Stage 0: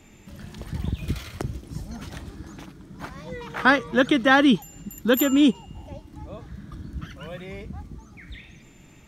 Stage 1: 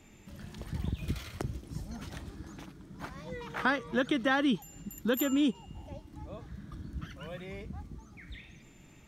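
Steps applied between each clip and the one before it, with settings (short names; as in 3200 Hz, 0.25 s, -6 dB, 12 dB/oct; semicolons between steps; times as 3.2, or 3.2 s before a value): compressor 2:1, threshold -22 dBFS, peak gain reduction 6.5 dB; gain -5.5 dB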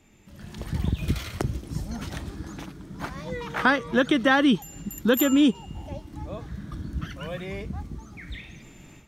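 AGC gain up to 10.5 dB; gain -2 dB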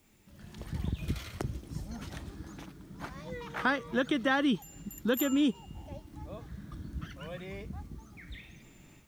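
added noise white -64 dBFS; gain -8 dB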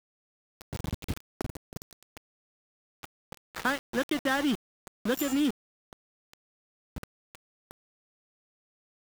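sample gate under -31.5 dBFS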